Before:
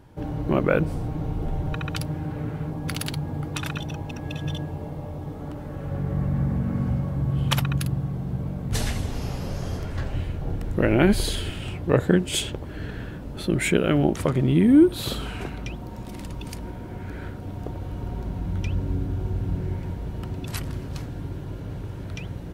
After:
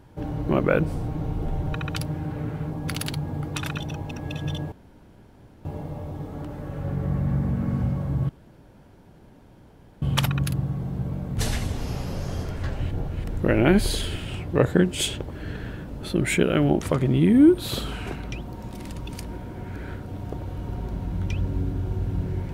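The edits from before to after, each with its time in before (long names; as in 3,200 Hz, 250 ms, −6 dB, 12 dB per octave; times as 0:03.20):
0:04.72: splice in room tone 0.93 s
0:07.36: splice in room tone 1.73 s
0:10.25–0:10.58: reverse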